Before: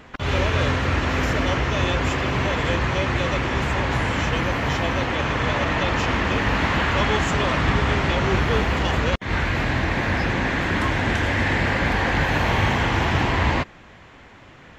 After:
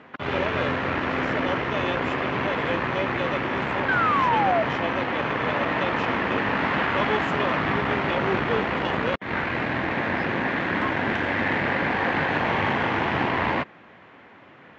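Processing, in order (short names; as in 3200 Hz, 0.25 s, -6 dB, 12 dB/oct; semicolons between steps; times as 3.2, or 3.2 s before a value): painted sound fall, 3.88–4.63, 630–1600 Hz -21 dBFS; added harmonics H 6 -22 dB, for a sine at -7 dBFS; BPF 180–2600 Hz; gain -1 dB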